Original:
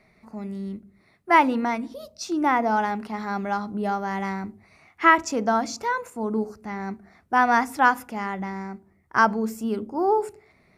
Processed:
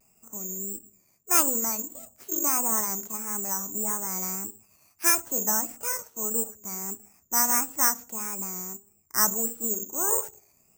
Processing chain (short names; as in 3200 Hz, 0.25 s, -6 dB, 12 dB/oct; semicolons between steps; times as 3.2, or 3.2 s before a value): formant shift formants +3 st; LPF 1300 Hz 6 dB/oct; careless resampling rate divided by 6×, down none, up zero stuff; vibrato 1.6 Hz 90 cents; gain -9 dB